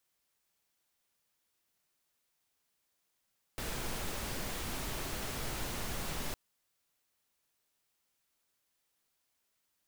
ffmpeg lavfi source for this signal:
-f lavfi -i "anoisesrc=c=pink:a=0.0646:d=2.76:r=44100:seed=1"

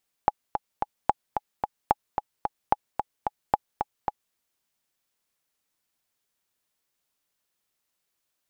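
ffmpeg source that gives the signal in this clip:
-f lavfi -i "aevalsrc='pow(10,(-5.5-6.5*gte(mod(t,3*60/221),60/221))/20)*sin(2*PI*837*mod(t,60/221))*exp(-6.91*mod(t,60/221)/0.03)':d=4.07:s=44100"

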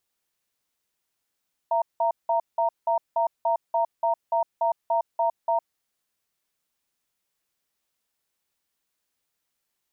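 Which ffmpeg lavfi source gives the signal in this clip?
-f lavfi -i "aevalsrc='0.075*(sin(2*PI*673*t)+sin(2*PI*928*t))*clip(min(mod(t,0.29),0.11-mod(t,0.29))/0.005,0,1)':d=3.94:s=44100"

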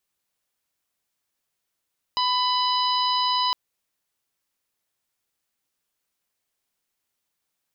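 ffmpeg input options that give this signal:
-f lavfi -i "aevalsrc='0.0794*sin(2*PI*997*t)+0.0106*sin(2*PI*1994*t)+0.0376*sin(2*PI*2991*t)+0.0398*sin(2*PI*3988*t)+0.0398*sin(2*PI*4985*t)':d=1.36:s=44100"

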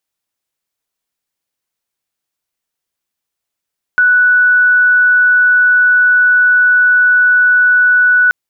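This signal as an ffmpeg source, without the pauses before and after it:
-f lavfi -i "aevalsrc='0.501*sin(2*PI*1480*t)':d=4.33:s=44100"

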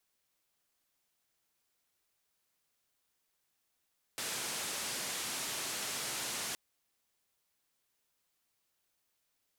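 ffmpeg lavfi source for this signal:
-f lavfi -i "anoisesrc=c=white:d=2.37:r=44100:seed=1,highpass=f=120,lowpass=f=9800,volume=-30.2dB"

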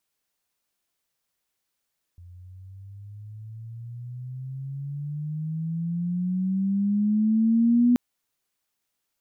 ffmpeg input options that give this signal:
-f lavfi -i "aevalsrc='pow(10,(-15+28*(t/5.78-1))/20)*sin(2*PI*86.9*5.78/(18*log(2)/12)*(exp(18*log(2)/12*t/5.78)-1))':d=5.78:s=44100"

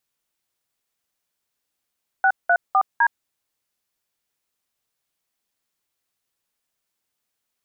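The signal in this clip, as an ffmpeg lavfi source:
-f lavfi -i "aevalsrc='0.158*clip(min(mod(t,0.254),0.066-mod(t,0.254))/0.002,0,1)*(eq(floor(t/0.254),0)*(sin(2*PI*770*mod(t,0.254))+sin(2*PI*1477*mod(t,0.254)))+eq(floor(t/0.254),1)*(sin(2*PI*697*mod(t,0.254))+sin(2*PI*1477*mod(t,0.254)))+eq(floor(t/0.254),2)*(sin(2*PI*770*mod(t,0.254))+sin(2*PI*1209*mod(t,0.254)))+eq(floor(t/0.254),3)*(sin(2*PI*941*mod(t,0.254))+sin(2*PI*1633*mod(t,0.254))))':d=1.016:s=44100"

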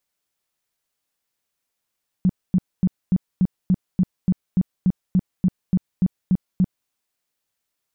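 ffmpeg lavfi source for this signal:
-f lavfi -i "aevalsrc='0.224*sin(2*PI*184*mod(t,0.29))*lt(mod(t,0.29),8/184)':d=4.64:s=44100"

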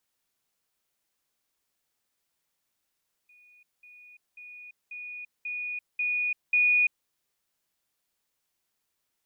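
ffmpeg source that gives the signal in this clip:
-f lavfi -i "aevalsrc='pow(10,(-55+6*floor(t/0.54))/20)*sin(2*PI*2460*t)*clip(min(mod(t,0.54),0.34-mod(t,0.54))/0.005,0,1)':d=3.78:s=44100"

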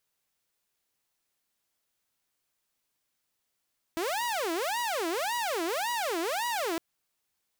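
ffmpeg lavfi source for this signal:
-f lavfi -i "aevalsrc='0.0501*(2*mod((646.5*t-321.5/(2*PI*1.8)*sin(2*PI*1.8*t)),1)-1)':d=2.81:s=44100"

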